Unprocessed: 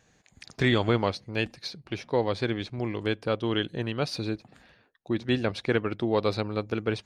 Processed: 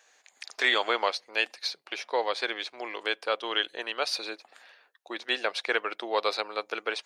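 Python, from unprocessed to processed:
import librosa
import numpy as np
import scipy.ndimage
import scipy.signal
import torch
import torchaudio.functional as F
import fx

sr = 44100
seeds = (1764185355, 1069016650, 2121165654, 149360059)

y = scipy.signal.sosfilt(scipy.signal.bessel(4, 760.0, 'highpass', norm='mag', fs=sr, output='sos'), x)
y = F.gain(torch.from_numpy(y), 5.0).numpy()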